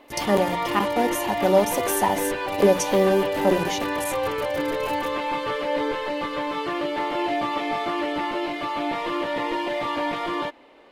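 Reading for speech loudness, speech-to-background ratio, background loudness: -23.5 LUFS, 3.0 dB, -26.5 LUFS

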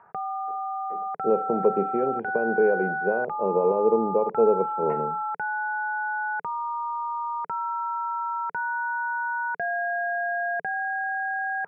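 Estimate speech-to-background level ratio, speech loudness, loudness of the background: 3.5 dB, -25.0 LUFS, -28.5 LUFS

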